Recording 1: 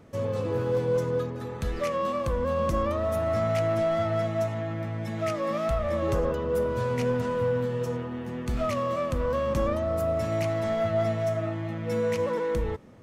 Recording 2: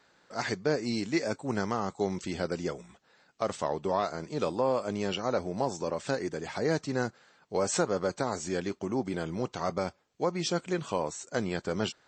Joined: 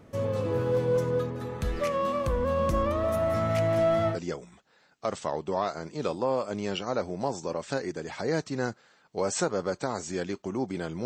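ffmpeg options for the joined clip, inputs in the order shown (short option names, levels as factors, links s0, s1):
-filter_complex "[0:a]asplit=3[s0][s1][s2];[s0]afade=t=out:st=2.94:d=0.02[s3];[s1]aecho=1:1:176:0.316,afade=t=in:st=2.94:d=0.02,afade=t=out:st=4.19:d=0.02[s4];[s2]afade=t=in:st=4.19:d=0.02[s5];[s3][s4][s5]amix=inputs=3:normalize=0,apad=whole_dur=11.05,atrim=end=11.05,atrim=end=4.19,asetpts=PTS-STARTPTS[s6];[1:a]atrim=start=2.46:end=9.42,asetpts=PTS-STARTPTS[s7];[s6][s7]acrossfade=d=0.1:c1=tri:c2=tri"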